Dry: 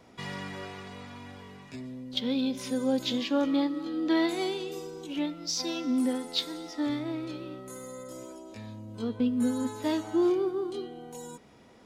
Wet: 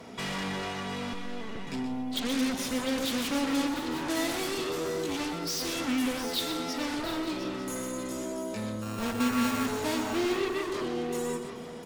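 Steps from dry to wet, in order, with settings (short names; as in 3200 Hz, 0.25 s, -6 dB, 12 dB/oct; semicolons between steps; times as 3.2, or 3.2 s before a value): 8.82–9.66 sample sorter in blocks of 32 samples; HPF 70 Hz 12 dB/oct; comb 4.5 ms, depth 34%; on a send at -19 dB: reverb RT60 0.70 s, pre-delay 71 ms; 1.13–1.67 on the sum: LPC vocoder at 8 kHz pitch kept; in parallel at -11 dB: sine folder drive 18 dB, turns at -19.5 dBFS; on the sum: tapped delay 0.124/0.43/0.703/0.748/0.895 s -9.5/-19/-11.5/-17.5/-17.5 dB; gain -3.5 dB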